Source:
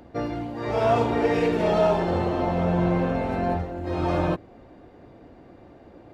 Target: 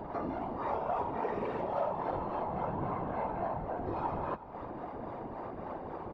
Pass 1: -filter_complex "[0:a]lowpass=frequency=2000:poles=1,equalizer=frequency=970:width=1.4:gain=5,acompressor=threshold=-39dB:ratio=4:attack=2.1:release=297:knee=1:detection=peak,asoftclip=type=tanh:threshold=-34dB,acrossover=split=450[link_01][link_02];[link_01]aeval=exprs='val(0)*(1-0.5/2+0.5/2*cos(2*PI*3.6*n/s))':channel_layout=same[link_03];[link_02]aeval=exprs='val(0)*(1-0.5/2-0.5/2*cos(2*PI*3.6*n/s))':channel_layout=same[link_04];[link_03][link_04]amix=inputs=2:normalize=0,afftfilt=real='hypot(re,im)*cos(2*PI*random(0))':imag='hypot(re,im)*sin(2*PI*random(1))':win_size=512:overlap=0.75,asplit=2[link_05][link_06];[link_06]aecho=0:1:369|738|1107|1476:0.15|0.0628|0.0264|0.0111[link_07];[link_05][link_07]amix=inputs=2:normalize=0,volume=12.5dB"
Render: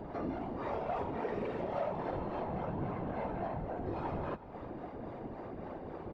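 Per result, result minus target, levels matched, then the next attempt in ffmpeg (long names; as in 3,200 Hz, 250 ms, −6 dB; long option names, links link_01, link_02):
soft clipping: distortion +15 dB; 1,000 Hz band −3.0 dB
-filter_complex "[0:a]lowpass=frequency=2000:poles=1,equalizer=frequency=970:width=1.4:gain=5,acompressor=threshold=-39dB:ratio=4:attack=2.1:release=297:knee=1:detection=peak,asoftclip=type=tanh:threshold=-24dB,acrossover=split=450[link_01][link_02];[link_01]aeval=exprs='val(0)*(1-0.5/2+0.5/2*cos(2*PI*3.6*n/s))':channel_layout=same[link_03];[link_02]aeval=exprs='val(0)*(1-0.5/2-0.5/2*cos(2*PI*3.6*n/s))':channel_layout=same[link_04];[link_03][link_04]amix=inputs=2:normalize=0,afftfilt=real='hypot(re,im)*cos(2*PI*random(0))':imag='hypot(re,im)*sin(2*PI*random(1))':win_size=512:overlap=0.75,asplit=2[link_05][link_06];[link_06]aecho=0:1:369|738|1107|1476:0.15|0.0628|0.0264|0.0111[link_07];[link_05][link_07]amix=inputs=2:normalize=0,volume=12.5dB"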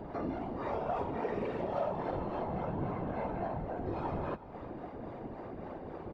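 1,000 Hz band −3.0 dB
-filter_complex "[0:a]lowpass=frequency=2000:poles=1,equalizer=frequency=970:width=1.4:gain=14,acompressor=threshold=-39dB:ratio=4:attack=2.1:release=297:knee=1:detection=peak,asoftclip=type=tanh:threshold=-24dB,acrossover=split=450[link_01][link_02];[link_01]aeval=exprs='val(0)*(1-0.5/2+0.5/2*cos(2*PI*3.6*n/s))':channel_layout=same[link_03];[link_02]aeval=exprs='val(0)*(1-0.5/2-0.5/2*cos(2*PI*3.6*n/s))':channel_layout=same[link_04];[link_03][link_04]amix=inputs=2:normalize=0,afftfilt=real='hypot(re,im)*cos(2*PI*random(0))':imag='hypot(re,im)*sin(2*PI*random(1))':win_size=512:overlap=0.75,asplit=2[link_05][link_06];[link_06]aecho=0:1:369|738|1107|1476:0.15|0.0628|0.0264|0.0111[link_07];[link_05][link_07]amix=inputs=2:normalize=0,volume=12.5dB"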